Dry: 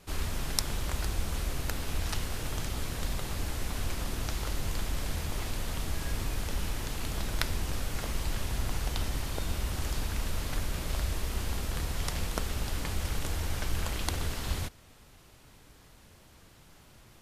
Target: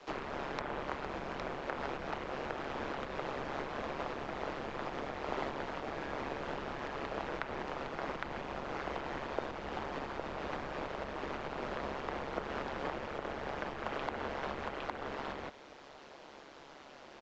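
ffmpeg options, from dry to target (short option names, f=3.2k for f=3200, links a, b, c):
-filter_complex "[0:a]acrossover=split=350|940|2600[a][b][c][d];[d]acompressor=threshold=-53dB:ratio=10[e];[a][b][c][e]amix=inputs=4:normalize=0,aecho=1:1:810:0.708,alimiter=level_in=3dB:limit=-24dB:level=0:latency=1:release=260,volume=-3dB,equalizer=f=620:w=0.44:g=8,tremolo=f=140:d=0.788,acrossover=split=260 6000:gain=0.141 1 0.0891[f][g][h];[f][g][h]amix=inputs=3:normalize=0,volume=4dB" -ar 16000 -c:a pcm_mulaw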